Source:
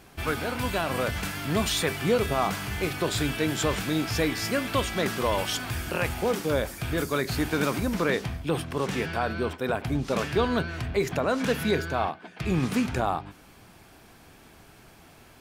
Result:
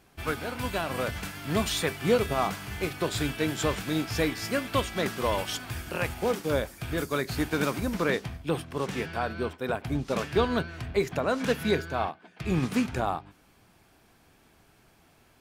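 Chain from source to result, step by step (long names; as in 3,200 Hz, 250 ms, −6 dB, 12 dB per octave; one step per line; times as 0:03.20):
expander for the loud parts 1.5 to 1, over −38 dBFS
level +1 dB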